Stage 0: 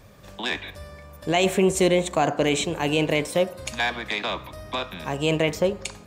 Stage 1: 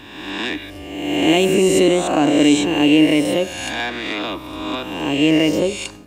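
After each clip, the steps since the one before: spectral swells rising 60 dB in 1.35 s; small resonant body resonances 300/2800 Hz, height 15 dB, ringing for 55 ms; gain -1.5 dB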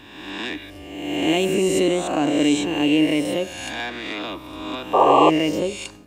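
painted sound noise, 4.93–5.3, 350–1200 Hz -9 dBFS; gain -5 dB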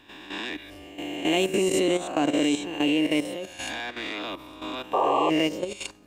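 bell 99 Hz -5 dB 2.7 oct; level quantiser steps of 11 dB

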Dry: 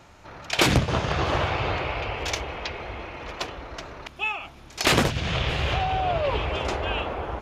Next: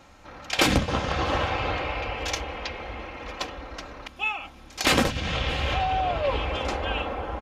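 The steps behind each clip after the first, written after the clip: comb 3.8 ms, depth 46%; gain -1.5 dB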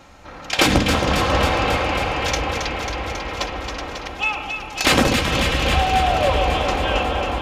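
in parallel at -11 dB: soft clip -21 dBFS, distortion -12 dB; on the sum: echo with dull and thin repeats by turns 0.136 s, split 980 Hz, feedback 87%, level -5 dB; gain +3.5 dB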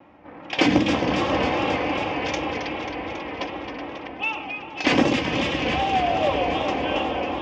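low-pass opened by the level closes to 1900 Hz, open at -14.5 dBFS; speaker cabinet 130–5300 Hz, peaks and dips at 300 Hz +7 dB, 1400 Hz -9 dB, 4100 Hz -10 dB; vibrato 2.6 Hz 73 cents; gain -3 dB

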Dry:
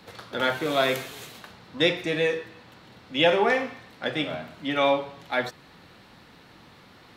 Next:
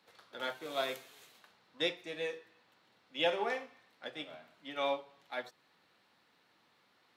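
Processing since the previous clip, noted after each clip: dynamic EQ 1800 Hz, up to -4 dB, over -36 dBFS, Q 1; HPF 520 Hz 6 dB/oct; upward expander 1.5:1, over -38 dBFS; gain -7 dB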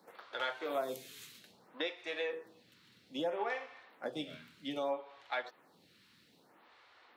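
low shelf 320 Hz +3 dB; compressor 5:1, threshold -40 dBFS, peak gain reduction 13.5 dB; photocell phaser 0.62 Hz; gain +8.5 dB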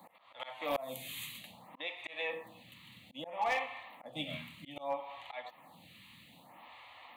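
fixed phaser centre 1500 Hz, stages 6; auto swell 0.34 s; hard clip -38.5 dBFS, distortion -18 dB; gain +12 dB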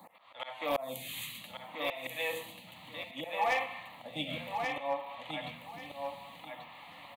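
feedback echo 1.137 s, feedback 23%, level -5 dB; gain +2.5 dB

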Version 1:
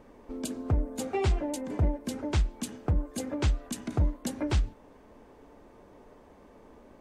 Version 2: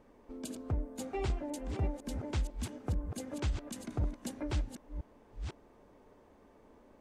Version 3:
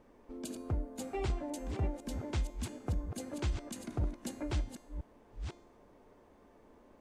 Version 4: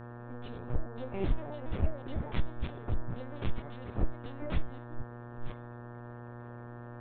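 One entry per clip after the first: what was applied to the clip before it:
reverse delay 0.501 s, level -7.5 dB; gain -7.5 dB
resonator 350 Hz, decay 0.73 s, mix 70%; gain +9.5 dB
chorus voices 6, 0.91 Hz, delay 17 ms, depth 1.6 ms; LPC vocoder at 8 kHz pitch kept; buzz 120 Hz, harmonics 15, -50 dBFS -5 dB/oct; gain +4.5 dB

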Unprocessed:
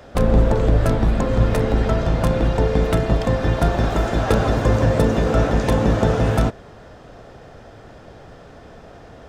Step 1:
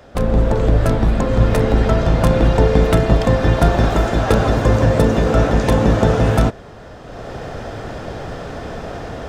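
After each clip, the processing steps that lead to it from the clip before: AGC gain up to 14.5 dB; gain -1 dB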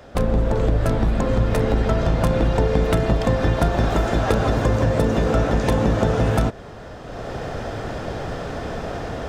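compressor 3:1, threshold -16 dBFS, peak gain reduction 7 dB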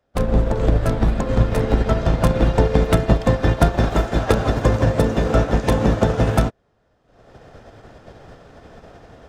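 upward expander 2.5:1, over -36 dBFS; gain +6 dB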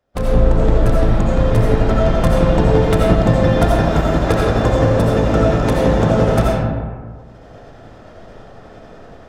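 reverb RT60 1.7 s, pre-delay 45 ms, DRR -3.5 dB; gain -1.5 dB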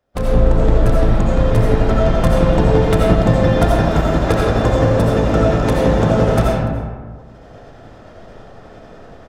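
echo 0.291 s -21.5 dB

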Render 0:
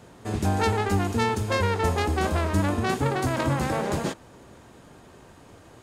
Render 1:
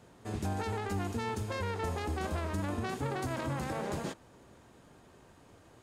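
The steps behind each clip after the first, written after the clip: limiter -16.5 dBFS, peak gain reduction 7.5 dB; gain -8.5 dB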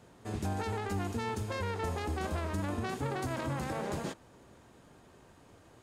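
nothing audible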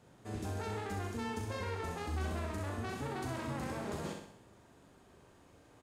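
doubler 39 ms -6 dB; on a send: flutter echo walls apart 11 m, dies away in 0.68 s; on the sum: gain -5.5 dB

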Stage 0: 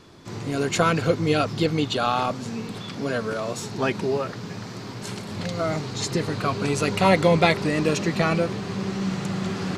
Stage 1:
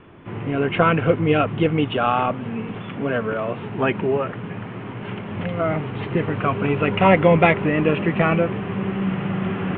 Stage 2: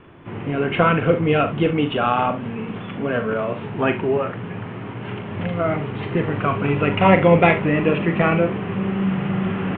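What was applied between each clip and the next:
steep low-pass 3100 Hz 72 dB/oct; gain +3.5 dB
early reflections 41 ms -9 dB, 68 ms -14 dB

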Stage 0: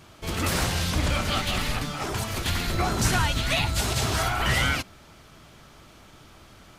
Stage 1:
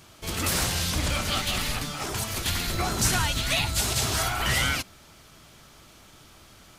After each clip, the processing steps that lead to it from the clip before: high shelf 3800 Hz +8.5 dB; gain -3 dB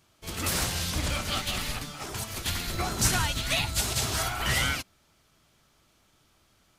upward expander 1.5:1, over -47 dBFS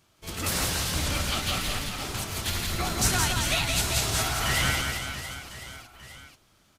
reverse bouncing-ball echo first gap 0.17 s, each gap 1.3×, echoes 5

